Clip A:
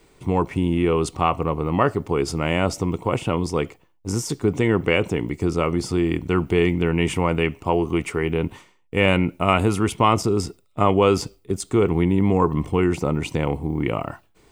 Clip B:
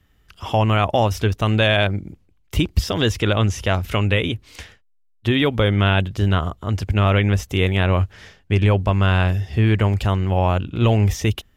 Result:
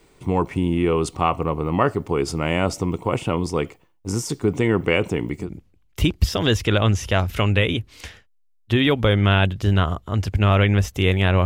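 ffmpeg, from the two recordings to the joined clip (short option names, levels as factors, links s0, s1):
-filter_complex "[0:a]apad=whole_dur=11.45,atrim=end=11.45,atrim=end=5.5,asetpts=PTS-STARTPTS[s0];[1:a]atrim=start=1.93:end=8,asetpts=PTS-STARTPTS[s1];[s0][s1]acrossfade=d=0.12:c1=tri:c2=tri"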